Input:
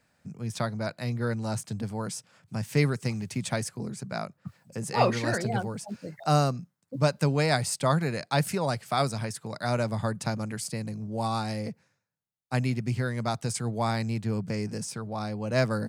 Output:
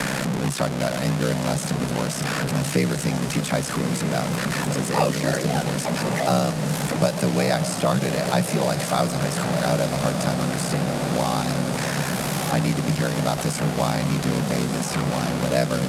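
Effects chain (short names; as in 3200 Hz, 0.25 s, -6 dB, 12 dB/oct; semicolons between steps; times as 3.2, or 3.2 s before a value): delta modulation 64 kbps, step -27 dBFS; in parallel at -12 dB: soft clip -21.5 dBFS, distortion -12 dB; on the sum: ring modulator 32 Hz; resonant low shelf 120 Hz -6 dB, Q 3; on a send: diffused feedback echo 1.244 s, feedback 67%, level -10 dB; on the sum: dynamic EQ 580 Hz, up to +5 dB, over -40 dBFS, Q 2.9; three-band squash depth 70%; gain +4 dB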